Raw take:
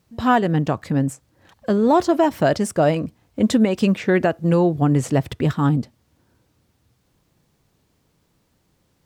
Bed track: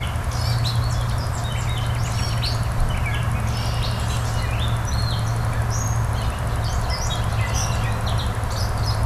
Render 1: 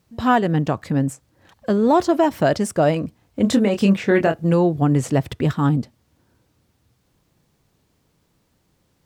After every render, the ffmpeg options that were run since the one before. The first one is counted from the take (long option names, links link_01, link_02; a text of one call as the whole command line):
ffmpeg -i in.wav -filter_complex "[0:a]asettb=1/sr,asplit=3[link_01][link_02][link_03];[link_01]atrim=end=3.424[link_04];[link_02]atrim=start=3.42:end=4.44,asetpts=PTS-STARTPTS,afade=type=in:duration=0.004:curve=qsin,afade=type=out:start_time=1.016:duration=0.004:curve=qsin,asplit=2[link_05][link_06];[link_06]adelay=25,volume=-6dB[link_07];[link_05][link_07]amix=inputs=2:normalize=0,atrim=end_sample=44982[link_08];[link_03]atrim=start=4.436[link_09];[link_04][link_08]acrossfade=duration=0.004:curve1=hsin:curve2=qsin[link_10];[link_10][link_09]acrossfade=duration=0.004:curve1=qsin:curve2=hsin" out.wav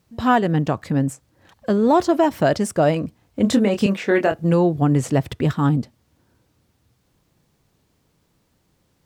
ffmpeg -i in.wav -filter_complex "[0:a]asettb=1/sr,asplit=3[link_01][link_02][link_03];[link_01]atrim=end=3.864[link_04];[link_02]atrim=start=3.86:end=4.32,asetpts=PTS-STARTPTS,afade=type=in:duration=0.004:curve=qsin,afade=type=out:start_time=0.456:duration=0.004:curve=qsin,highpass=260[link_05];[link_03]atrim=start=4.316[link_06];[link_04][link_05]acrossfade=duration=0.004:curve1=hsin:curve2=qsin[link_07];[link_07][link_06]acrossfade=duration=0.004:curve1=qsin:curve2=hsin" out.wav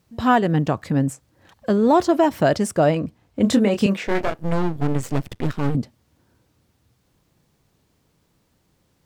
ffmpeg -i in.wav -filter_complex "[0:a]asettb=1/sr,asplit=3[link_01][link_02][link_03];[link_01]atrim=end=2.864[link_04];[link_02]atrim=start=2.86:end=3.41,asetpts=PTS-STARTPTS,afade=type=in:duration=0.004:curve=qsin,afade=type=out:start_time=0.546:duration=0.004:curve=qsin,highshelf=frequency=5800:gain=-6[link_05];[link_03]atrim=start=3.406[link_06];[link_04][link_05]acrossfade=duration=0.004:curve1=hsin:curve2=qsin[link_07];[link_07][link_06]acrossfade=duration=0.004:curve1=qsin:curve2=hsin,asettb=1/sr,asplit=3[link_08][link_09][link_10];[link_08]atrim=end=4.074[link_11];[link_09]atrim=start=4.07:end=5.75,asetpts=PTS-STARTPTS,afade=type=in:duration=0.004:curve=qsin,afade=type=out:start_time=1.676:duration=0.004:curve=qsin,aeval=exprs='max(val(0),0)':channel_layout=same[link_12];[link_10]atrim=start=5.746[link_13];[link_11][link_12]acrossfade=duration=0.004:curve1=hsin:curve2=qsin[link_14];[link_14][link_13]acrossfade=duration=0.004:curve1=qsin:curve2=hsin" out.wav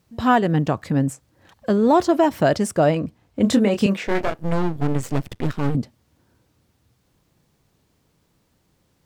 ffmpeg -i in.wav -af anull out.wav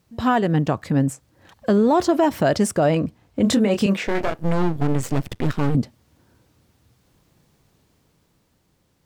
ffmpeg -i in.wav -af "dynaudnorm=framelen=200:gausssize=13:maxgain=4dB,alimiter=limit=-10dB:level=0:latency=1:release=53" out.wav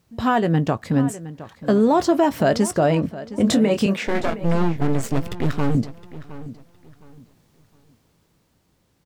ffmpeg -i in.wav -filter_complex "[0:a]asplit=2[link_01][link_02];[link_02]adelay=18,volume=-14dB[link_03];[link_01][link_03]amix=inputs=2:normalize=0,asplit=2[link_04][link_05];[link_05]adelay=714,lowpass=frequency=4600:poles=1,volume=-15.5dB,asplit=2[link_06][link_07];[link_07]adelay=714,lowpass=frequency=4600:poles=1,volume=0.27,asplit=2[link_08][link_09];[link_09]adelay=714,lowpass=frequency=4600:poles=1,volume=0.27[link_10];[link_04][link_06][link_08][link_10]amix=inputs=4:normalize=0" out.wav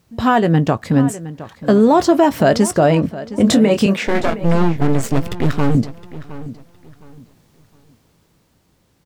ffmpeg -i in.wav -af "volume=5dB" out.wav